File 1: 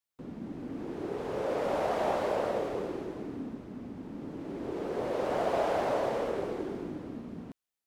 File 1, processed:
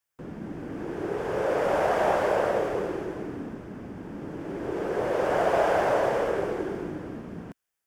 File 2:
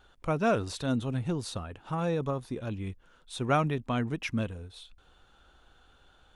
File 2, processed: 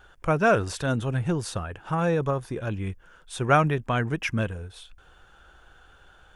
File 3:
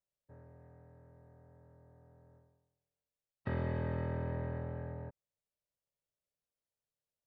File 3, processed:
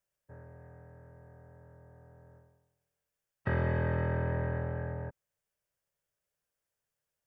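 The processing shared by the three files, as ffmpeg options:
-af "equalizer=f=250:t=o:w=0.33:g=-8,equalizer=f=1.6k:t=o:w=0.33:g=6,equalizer=f=4k:t=o:w=0.33:g=-8,volume=6dB"

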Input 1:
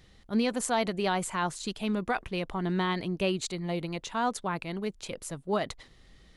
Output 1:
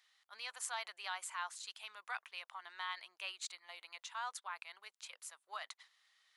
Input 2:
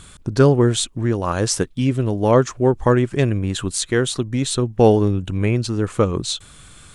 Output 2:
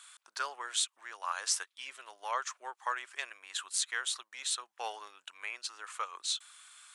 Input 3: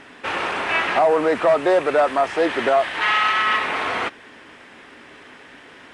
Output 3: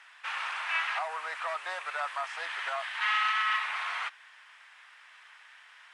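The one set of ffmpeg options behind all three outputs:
-af "highpass=f=990:w=0.5412,highpass=f=990:w=1.3066,volume=-8.5dB"

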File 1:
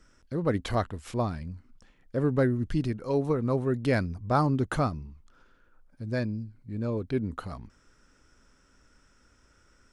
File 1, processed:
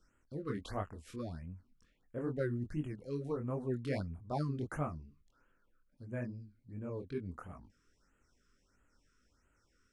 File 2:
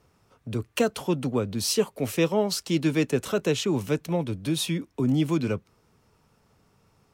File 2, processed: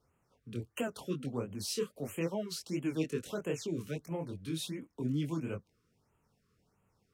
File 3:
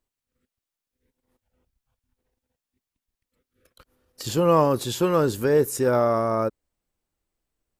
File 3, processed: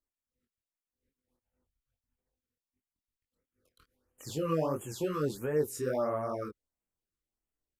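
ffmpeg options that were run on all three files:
-af "flanger=delay=20:depth=5.4:speed=2.5,afftfilt=real='re*(1-between(b*sr/1024,690*pow(4800/690,0.5+0.5*sin(2*PI*1.5*pts/sr))/1.41,690*pow(4800/690,0.5+0.5*sin(2*PI*1.5*pts/sr))*1.41))':imag='im*(1-between(b*sr/1024,690*pow(4800/690,0.5+0.5*sin(2*PI*1.5*pts/sr))/1.41,690*pow(4800/690,0.5+0.5*sin(2*PI*1.5*pts/sr))*1.41))':win_size=1024:overlap=0.75,volume=-8dB"

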